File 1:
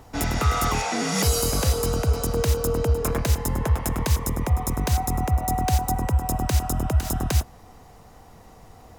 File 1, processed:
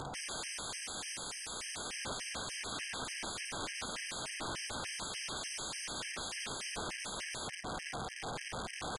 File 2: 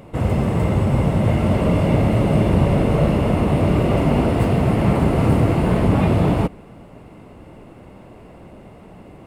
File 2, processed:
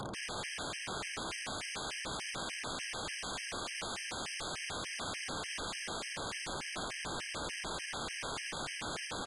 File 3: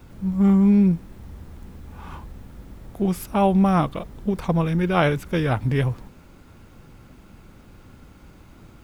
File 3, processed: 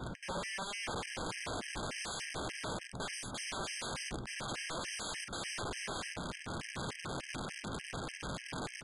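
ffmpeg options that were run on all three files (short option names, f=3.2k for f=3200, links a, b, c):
-filter_complex "[0:a]equalizer=f=150:w=1.4:g=8,alimiter=limit=-10.5dB:level=0:latency=1:release=207,areverse,acompressor=threshold=-30dB:ratio=16,areverse,asplit=2[a][b];[b]highpass=f=720:p=1,volume=14dB,asoftclip=type=tanh:threshold=-22dB[c];[a][c]amix=inputs=2:normalize=0,lowpass=f=2.4k:p=1,volume=-6dB,aecho=1:1:15|34|50:0.237|0.133|0.708,aeval=exprs='(mod(70.8*val(0)+1,2)-1)/70.8':c=same,aresample=22050,aresample=44100,afftfilt=real='re*gt(sin(2*PI*3.4*pts/sr)*(1-2*mod(floor(b*sr/1024/1600),2)),0)':imag='im*gt(sin(2*PI*3.4*pts/sr)*(1-2*mod(floor(b*sr/1024/1600),2)),0)':win_size=1024:overlap=0.75,volume=4.5dB"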